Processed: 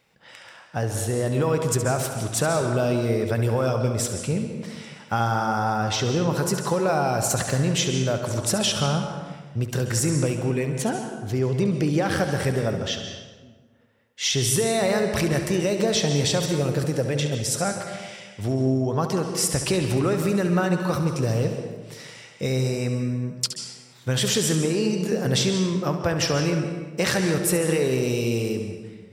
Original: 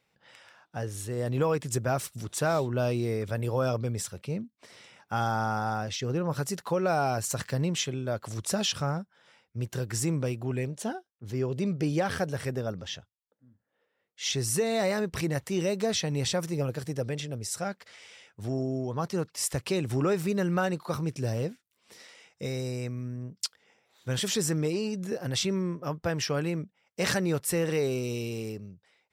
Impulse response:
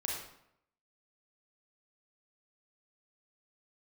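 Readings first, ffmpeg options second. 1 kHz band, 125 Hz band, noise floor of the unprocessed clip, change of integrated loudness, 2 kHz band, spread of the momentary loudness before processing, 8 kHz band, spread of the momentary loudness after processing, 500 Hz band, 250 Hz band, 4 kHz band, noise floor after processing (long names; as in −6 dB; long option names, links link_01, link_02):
+5.5 dB, +7.0 dB, −78 dBFS, +6.5 dB, +6.5 dB, 9 LU, +7.5 dB, 9 LU, +6.0 dB, +7.0 dB, +7.5 dB, −49 dBFS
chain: -filter_complex "[0:a]acompressor=threshold=-28dB:ratio=6,asplit=2[link_01][link_02];[1:a]atrim=start_sample=2205,asetrate=23373,aresample=44100,adelay=69[link_03];[link_02][link_03]afir=irnorm=-1:irlink=0,volume=-12dB[link_04];[link_01][link_04]amix=inputs=2:normalize=0,volume=8.5dB"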